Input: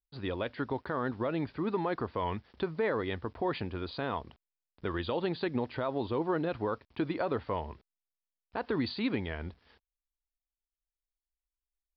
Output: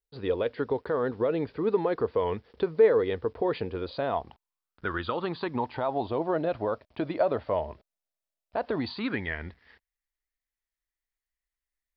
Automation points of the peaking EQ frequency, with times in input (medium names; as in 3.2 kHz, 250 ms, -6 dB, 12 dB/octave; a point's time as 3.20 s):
peaking EQ +13.5 dB 0.44 oct
3.77 s 460 Hz
4.86 s 1.5 kHz
6.25 s 620 Hz
8.74 s 620 Hz
9.20 s 1.9 kHz